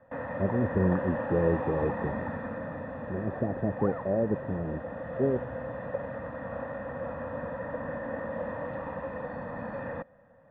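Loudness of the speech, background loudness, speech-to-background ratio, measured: -30.5 LUFS, -36.0 LUFS, 5.5 dB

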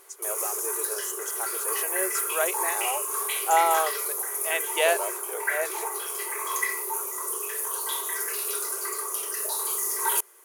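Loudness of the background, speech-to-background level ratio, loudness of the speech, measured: -27.0 LUFS, -2.5 dB, -29.5 LUFS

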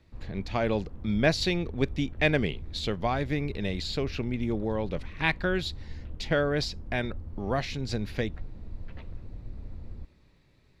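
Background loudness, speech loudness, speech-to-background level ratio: -43.5 LUFS, -30.0 LUFS, 13.5 dB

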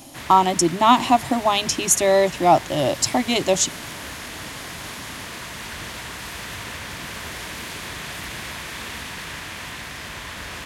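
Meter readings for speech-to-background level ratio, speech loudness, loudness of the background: 14.0 dB, -18.5 LUFS, -32.5 LUFS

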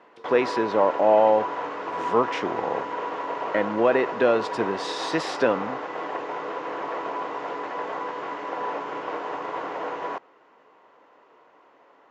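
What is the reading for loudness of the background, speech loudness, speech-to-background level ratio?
-31.0 LUFS, -24.0 LUFS, 7.0 dB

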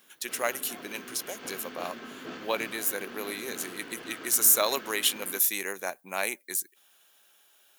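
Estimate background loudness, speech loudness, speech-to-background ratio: -43.0 LUFS, -28.0 LUFS, 15.0 dB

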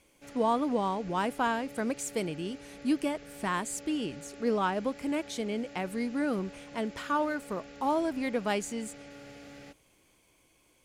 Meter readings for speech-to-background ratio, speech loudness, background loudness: 16.5 dB, -32.0 LUFS, -48.5 LUFS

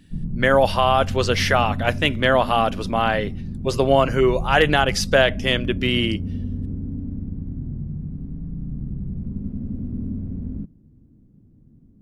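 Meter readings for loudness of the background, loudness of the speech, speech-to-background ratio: -30.0 LUFS, -19.5 LUFS, 10.5 dB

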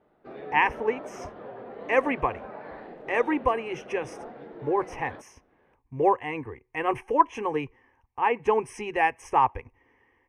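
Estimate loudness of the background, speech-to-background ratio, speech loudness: -42.0 LUFS, 15.0 dB, -27.0 LUFS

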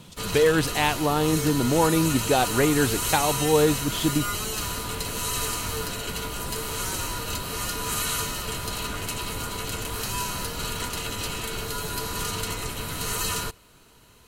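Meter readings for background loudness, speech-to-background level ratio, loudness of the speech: -28.5 LUFS, 5.0 dB, -23.5 LUFS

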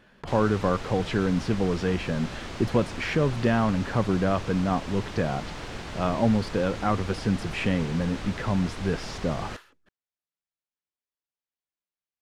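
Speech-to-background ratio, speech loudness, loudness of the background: 10.5 dB, -27.0 LUFS, -37.5 LUFS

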